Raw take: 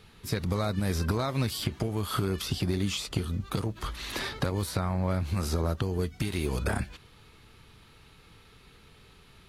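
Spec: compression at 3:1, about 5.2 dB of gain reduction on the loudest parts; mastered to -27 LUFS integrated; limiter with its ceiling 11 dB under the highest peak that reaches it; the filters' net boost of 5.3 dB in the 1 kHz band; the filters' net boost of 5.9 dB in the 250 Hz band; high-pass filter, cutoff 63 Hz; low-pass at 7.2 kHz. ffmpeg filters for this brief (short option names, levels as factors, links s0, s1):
-af "highpass=63,lowpass=7200,equalizer=f=250:t=o:g=8,equalizer=f=1000:t=o:g=6.5,acompressor=threshold=0.0398:ratio=3,volume=2.66,alimiter=limit=0.168:level=0:latency=1"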